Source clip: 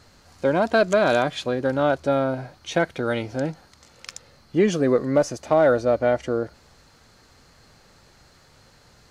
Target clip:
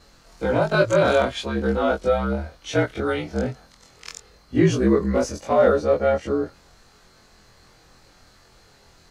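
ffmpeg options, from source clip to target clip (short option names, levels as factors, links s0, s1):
-af "afftfilt=real='re':imag='-im':win_size=2048:overlap=0.75,afreqshift=-52,volume=1.78"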